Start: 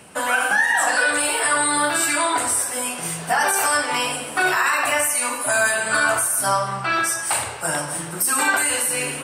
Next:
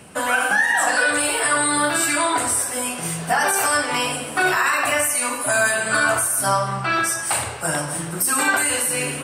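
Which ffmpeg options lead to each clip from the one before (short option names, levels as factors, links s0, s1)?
-af "lowshelf=f=280:g=6,bandreject=f=900:w=24"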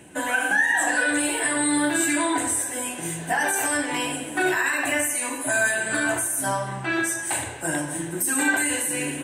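-af "superequalizer=6b=2.82:10b=0.398:11b=1.41:14b=0.447:15b=1.41,volume=0.562"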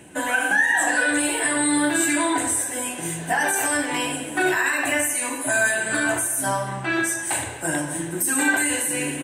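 -af "aecho=1:1:217:0.0794,volume=1.19"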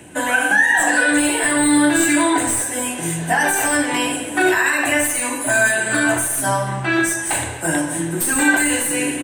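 -filter_complex "[0:a]acrossover=split=350|4600[s0][s1][s2];[s0]asplit=2[s3][s4];[s4]adelay=24,volume=0.562[s5];[s3][s5]amix=inputs=2:normalize=0[s6];[s2]aeval=exprs='clip(val(0),-1,0.0501)':c=same[s7];[s6][s1][s7]amix=inputs=3:normalize=0,volume=1.68"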